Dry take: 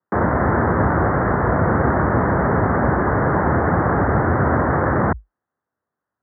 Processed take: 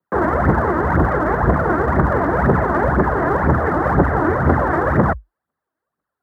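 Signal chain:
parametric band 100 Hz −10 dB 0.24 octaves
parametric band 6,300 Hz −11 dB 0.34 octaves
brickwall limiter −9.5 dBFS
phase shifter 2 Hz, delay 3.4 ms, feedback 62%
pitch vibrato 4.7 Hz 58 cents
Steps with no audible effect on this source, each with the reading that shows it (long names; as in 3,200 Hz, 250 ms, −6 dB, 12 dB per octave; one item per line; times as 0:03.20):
parametric band 6,300 Hz: nothing at its input above 2,200 Hz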